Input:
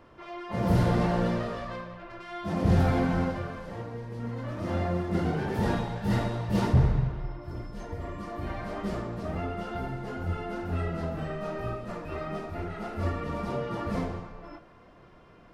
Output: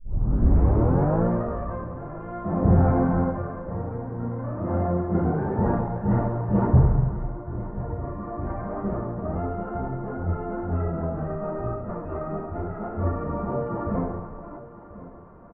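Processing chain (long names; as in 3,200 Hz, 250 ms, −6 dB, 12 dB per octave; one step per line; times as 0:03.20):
turntable start at the beginning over 1.26 s
low-pass filter 1,300 Hz 24 dB per octave
repeating echo 1,039 ms, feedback 36%, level −16.5 dB
level +4.5 dB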